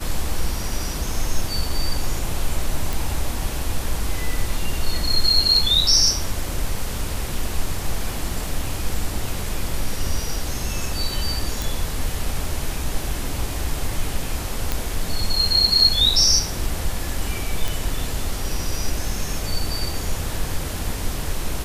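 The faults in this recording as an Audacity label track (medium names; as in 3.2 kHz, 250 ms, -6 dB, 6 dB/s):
2.930000	2.930000	pop
11.620000	11.620000	pop
14.720000	14.720000	pop -6 dBFS
17.680000	17.680000	pop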